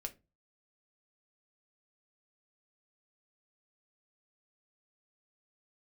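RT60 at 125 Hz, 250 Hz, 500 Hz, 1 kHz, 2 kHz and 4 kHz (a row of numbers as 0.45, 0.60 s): 0.45, 0.35, 0.30, 0.25, 0.20, 0.15 s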